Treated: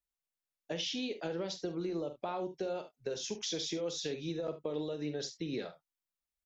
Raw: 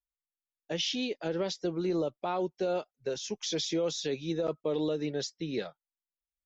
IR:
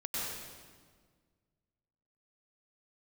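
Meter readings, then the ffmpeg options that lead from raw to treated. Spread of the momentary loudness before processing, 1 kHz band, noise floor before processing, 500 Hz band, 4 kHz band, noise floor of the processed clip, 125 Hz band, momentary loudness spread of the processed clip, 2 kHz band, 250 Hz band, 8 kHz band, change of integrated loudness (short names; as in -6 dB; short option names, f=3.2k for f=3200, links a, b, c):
5 LU, -5.5 dB, under -85 dBFS, -5.5 dB, -4.0 dB, under -85 dBFS, -4.5 dB, 4 LU, -4.5 dB, -5.0 dB, n/a, -5.0 dB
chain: -filter_complex "[0:a]acompressor=threshold=-34dB:ratio=6,asplit=2[a][b];[b]aecho=0:1:47|74:0.299|0.188[c];[a][c]amix=inputs=2:normalize=0"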